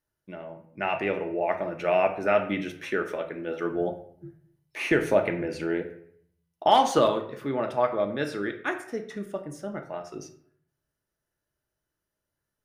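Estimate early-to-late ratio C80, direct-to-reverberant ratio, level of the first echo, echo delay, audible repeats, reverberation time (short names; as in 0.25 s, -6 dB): 13.5 dB, 4.0 dB, none, none, none, 0.60 s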